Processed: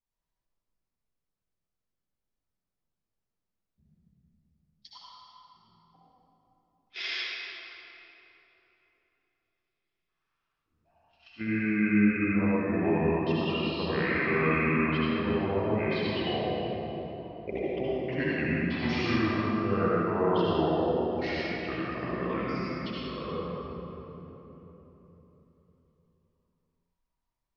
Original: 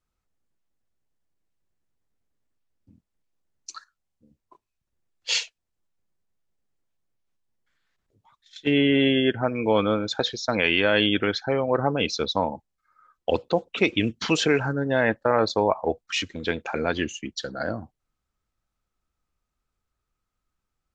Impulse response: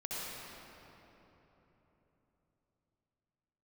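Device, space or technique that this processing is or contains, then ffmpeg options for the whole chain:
slowed and reverbed: -filter_complex "[0:a]asetrate=33516,aresample=44100[s0];[1:a]atrim=start_sample=2205[s1];[s0][s1]afir=irnorm=-1:irlink=0,volume=0.398"

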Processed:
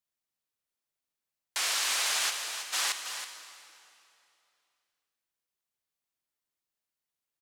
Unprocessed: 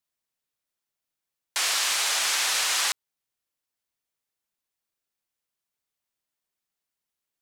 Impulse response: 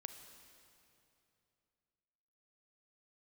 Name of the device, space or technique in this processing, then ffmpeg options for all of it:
cave: -filter_complex "[0:a]asplit=3[s0][s1][s2];[s0]afade=t=out:st=2.29:d=0.02[s3];[s1]agate=range=0.0224:threshold=0.224:ratio=3:detection=peak,afade=t=in:st=2.29:d=0.02,afade=t=out:st=2.72:d=0.02[s4];[s2]afade=t=in:st=2.72:d=0.02[s5];[s3][s4][s5]amix=inputs=3:normalize=0,aecho=1:1:323:0.335[s6];[1:a]atrim=start_sample=2205[s7];[s6][s7]afir=irnorm=-1:irlink=0"

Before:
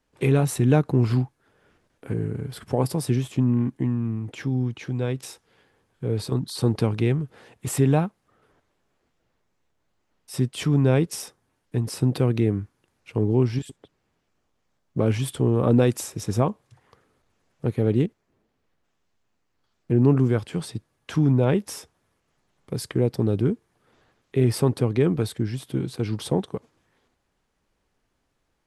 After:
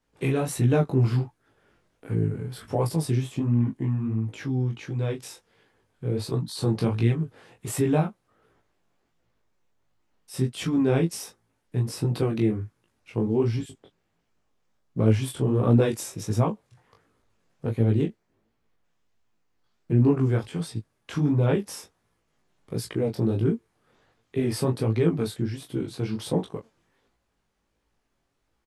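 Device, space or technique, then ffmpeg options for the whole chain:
double-tracked vocal: -filter_complex "[0:a]asplit=2[s0][s1];[s1]adelay=18,volume=0.501[s2];[s0][s2]amix=inputs=2:normalize=0,flanger=delay=17:depth=6.8:speed=1.4"

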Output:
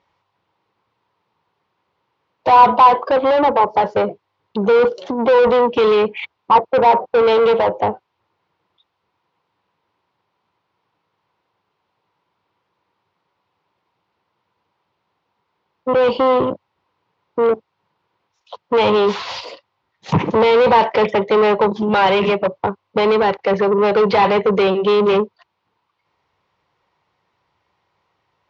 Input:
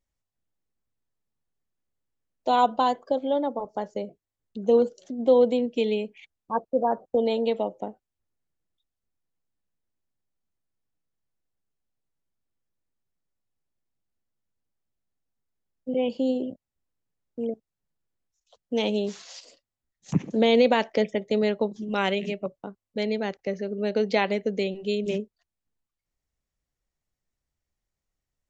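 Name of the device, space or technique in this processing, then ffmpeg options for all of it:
overdrive pedal into a guitar cabinet: -filter_complex "[0:a]asplit=2[s0][s1];[s1]highpass=f=720:p=1,volume=39.8,asoftclip=type=tanh:threshold=0.376[s2];[s0][s2]amix=inputs=2:normalize=0,lowpass=f=1300:p=1,volume=0.501,highpass=82,equalizer=f=98:t=q:w=4:g=6,equalizer=f=250:t=q:w=4:g=-9,equalizer=f=640:t=q:w=4:g=-5,equalizer=f=970:t=q:w=4:g=9,equalizer=f=1700:t=q:w=4:g=-5,lowpass=f=4600:w=0.5412,lowpass=f=4600:w=1.3066,volume=1.58"

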